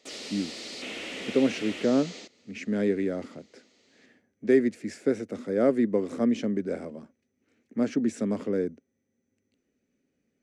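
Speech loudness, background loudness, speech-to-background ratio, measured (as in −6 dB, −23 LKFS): −28.0 LKFS, −37.5 LKFS, 9.5 dB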